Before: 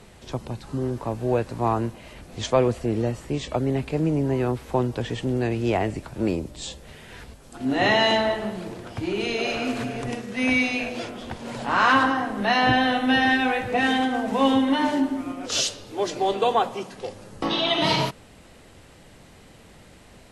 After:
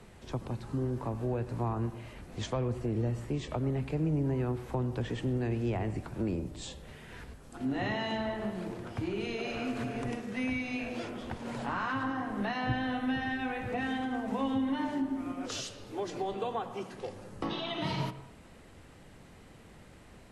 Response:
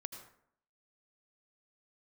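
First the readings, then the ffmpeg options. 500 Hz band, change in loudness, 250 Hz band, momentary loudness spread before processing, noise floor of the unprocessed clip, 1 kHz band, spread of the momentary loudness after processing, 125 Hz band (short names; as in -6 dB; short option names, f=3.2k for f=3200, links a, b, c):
-11.0 dB, -10.5 dB, -8.5 dB, 15 LU, -50 dBFS, -13.0 dB, 9 LU, -4.5 dB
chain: -filter_complex "[0:a]equalizer=f=610:w=1.5:g=-2.5,acrossover=split=180[a][b];[b]acompressor=threshold=-29dB:ratio=4[c];[a][c]amix=inputs=2:normalize=0,asplit=2[d][e];[1:a]atrim=start_sample=2205,lowpass=2.7k[f];[e][f]afir=irnorm=-1:irlink=0,volume=0dB[g];[d][g]amix=inputs=2:normalize=0,volume=-8dB"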